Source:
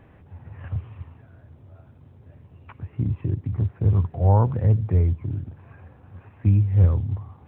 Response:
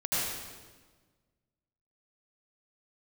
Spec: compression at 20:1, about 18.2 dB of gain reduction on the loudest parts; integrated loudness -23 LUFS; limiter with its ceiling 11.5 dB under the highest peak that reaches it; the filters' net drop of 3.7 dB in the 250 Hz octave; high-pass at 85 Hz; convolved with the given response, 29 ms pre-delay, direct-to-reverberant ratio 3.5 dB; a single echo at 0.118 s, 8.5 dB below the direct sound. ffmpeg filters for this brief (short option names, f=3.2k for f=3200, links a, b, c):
-filter_complex "[0:a]highpass=85,equalizer=f=250:t=o:g=-5.5,acompressor=threshold=-33dB:ratio=20,alimiter=level_in=11dB:limit=-24dB:level=0:latency=1,volume=-11dB,aecho=1:1:118:0.376,asplit=2[a][b];[1:a]atrim=start_sample=2205,adelay=29[c];[b][c]afir=irnorm=-1:irlink=0,volume=-12.5dB[d];[a][d]amix=inputs=2:normalize=0,volume=19dB"